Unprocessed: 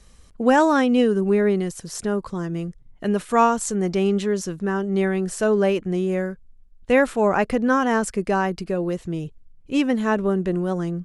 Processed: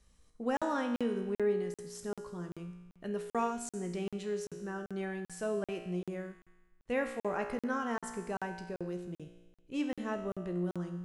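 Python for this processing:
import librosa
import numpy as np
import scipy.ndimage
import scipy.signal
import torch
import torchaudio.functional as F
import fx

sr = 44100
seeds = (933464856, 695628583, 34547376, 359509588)

y = fx.comb_fb(x, sr, f0_hz=59.0, decay_s=1.2, harmonics='all', damping=0.0, mix_pct=80)
y = fx.buffer_crackle(y, sr, first_s=0.57, period_s=0.39, block=2048, kind='zero')
y = y * librosa.db_to_amplitude(-4.5)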